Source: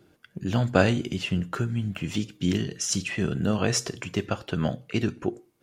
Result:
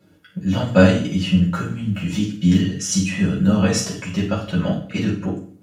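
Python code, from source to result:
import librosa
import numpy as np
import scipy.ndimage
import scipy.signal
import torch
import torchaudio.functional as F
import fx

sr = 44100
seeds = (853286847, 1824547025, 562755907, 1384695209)

y = fx.rev_fdn(x, sr, rt60_s=0.48, lf_ratio=1.35, hf_ratio=0.95, size_ms=32.0, drr_db=-7.5)
y = F.gain(torch.from_numpy(y), -4.0).numpy()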